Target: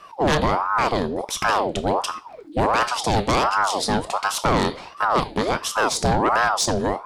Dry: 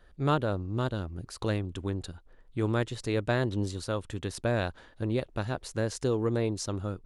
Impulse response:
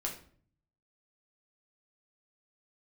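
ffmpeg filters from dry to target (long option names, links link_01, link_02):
-filter_complex "[0:a]asplit=2[link_01][link_02];[link_02]equalizer=frequency=4400:width_type=o:width=0.53:gain=11[link_03];[1:a]atrim=start_sample=2205,highshelf=frequency=2300:gain=11[link_04];[link_03][link_04]afir=irnorm=-1:irlink=0,volume=-14.5dB[link_05];[link_01][link_05]amix=inputs=2:normalize=0,aeval=exprs='0.266*sin(PI/2*3.16*val(0)/0.266)':channel_layout=same,aeval=exprs='val(0)*sin(2*PI*740*n/s+740*0.6/1.4*sin(2*PI*1.4*n/s))':channel_layout=same"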